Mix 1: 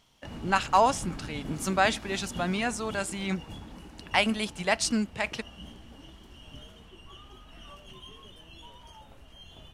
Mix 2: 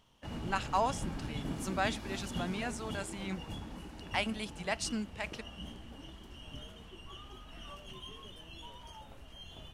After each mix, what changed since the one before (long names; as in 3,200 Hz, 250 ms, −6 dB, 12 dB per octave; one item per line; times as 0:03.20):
speech −9.0 dB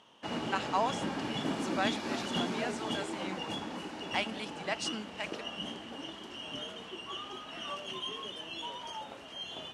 background +10.0 dB
master: add band-pass filter 280–7,300 Hz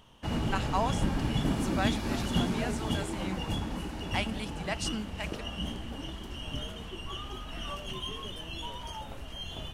master: remove band-pass filter 280–7,300 Hz